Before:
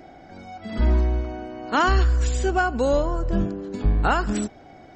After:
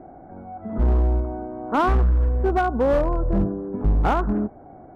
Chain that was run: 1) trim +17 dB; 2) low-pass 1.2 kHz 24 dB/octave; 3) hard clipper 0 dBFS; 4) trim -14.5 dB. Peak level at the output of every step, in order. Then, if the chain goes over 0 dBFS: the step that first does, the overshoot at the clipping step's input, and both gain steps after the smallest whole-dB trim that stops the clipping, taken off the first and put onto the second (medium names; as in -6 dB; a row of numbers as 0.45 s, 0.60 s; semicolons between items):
+7.0 dBFS, +6.5 dBFS, 0.0 dBFS, -14.5 dBFS; step 1, 6.5 dB; step 1 +10 dB, step 4 -7.5 dB